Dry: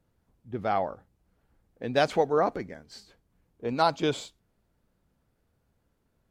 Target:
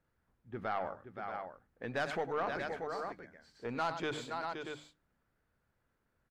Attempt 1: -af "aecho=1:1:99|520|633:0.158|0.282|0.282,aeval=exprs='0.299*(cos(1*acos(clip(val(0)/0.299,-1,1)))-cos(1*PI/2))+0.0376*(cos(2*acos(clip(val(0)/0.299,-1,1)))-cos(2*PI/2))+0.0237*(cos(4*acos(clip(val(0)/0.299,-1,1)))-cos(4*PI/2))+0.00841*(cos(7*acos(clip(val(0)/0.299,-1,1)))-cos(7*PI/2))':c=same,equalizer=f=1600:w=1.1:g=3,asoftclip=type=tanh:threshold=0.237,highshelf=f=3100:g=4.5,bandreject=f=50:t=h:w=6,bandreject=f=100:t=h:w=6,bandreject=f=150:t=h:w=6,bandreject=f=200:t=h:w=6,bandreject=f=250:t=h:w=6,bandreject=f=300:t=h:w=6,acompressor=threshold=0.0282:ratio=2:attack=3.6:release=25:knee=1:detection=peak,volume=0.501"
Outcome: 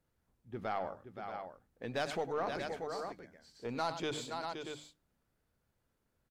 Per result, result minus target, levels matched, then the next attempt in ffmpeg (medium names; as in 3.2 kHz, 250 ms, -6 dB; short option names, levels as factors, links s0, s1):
8 kHz band +6.5 dB; 2 kHz band -3.0 dB
-af "aecho=1:1:99|520|633:0.158|0.282|0.282,aeval=exprs='0.299*(cos(1*acos(clip(val(0)/0.299,-1,1)))-cos(1*PI/2))+0.0376*(cos(2*acos(clip(val(0)/0.299,-1,1)))-cos(2*PI/2))+0.0237*(cos(4*acos(clip(val(0)/0.299,-1,1)))-cos(4*PI/2))+0.00841*(cos(7*acos(clip(val(0)/0.299,-1,1)))-cos(7*PI/2))':c=same,equalizer=f=1600:w=1.1:g=3,asoftclip=type=tanh:threshold=0.237,highshelf=f=3100:g=-2.5,bandreject=f=50:t=h:w=6,bandreject=f=100:t=h:w=6,bandreject=f=150:t=h:w=6,bandreject=f=200:t=h:w=6,bandreject=f=250:t=h:w=6,bandreject=f=300:t=h:w=6,acompressor=threshold=0.0282:ratio=2:attack=3.6:release=25:knee=1:detection=peak,volume=0.501"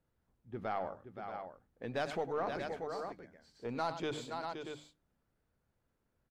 2 kHz band -4.0 dB
-af "aecho=1:1:99|520|633:0.158|0.282|0.282,aeval=exprs='0.299*(cos(1*acos(clip(val(0)/0.299,-1,1)))-cos(1*PI/2))+0.0376*(cos(2*acos(clip(val(0)/0.299,-1,1)))-cos(2*PI/2))+0.0237*(cos(4*acos(clip(val(0)/0.299,-1,1)))-cos(4*PI/2))+0.00841*(cos(7*acos(clip(val(0)/0.299,-1,1)))-cos(7*PI/2))':c=same,equalizer=f=1600:w=1.1:g=10,asoftclip=type=tanh:threshold=0.237,highshelf=f=3100:g=-2.5,bandreject=f=50:t=h:w=6,bandreject=f=100:t=h:w=6,bandreject=f=150:t=h:w=6,bandreject=f=200:t=h:w=6,bandreject=f=250:t=h:w=6,bandreject=f=300:t=h:w=6,acompressor=threshold=0.0282:ratio=2:attack=3.6:release=25:knee=1:detection=peak,volume=0.501"